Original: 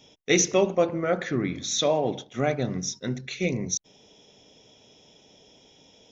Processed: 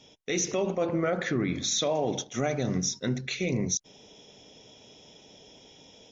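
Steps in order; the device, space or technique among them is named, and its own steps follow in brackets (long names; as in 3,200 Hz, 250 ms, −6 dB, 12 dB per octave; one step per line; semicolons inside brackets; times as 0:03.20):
0:01.95–0:02.78: parametric band 6,100 Hz +12 dB 0.47 octaves
low-bitrate web radio (automatic gain control gain up to 3 dB; brickwall limiter −18 dBFS, peak gain reduction 10.5 dB; MP3 48 kbit/s 32,000 Hz)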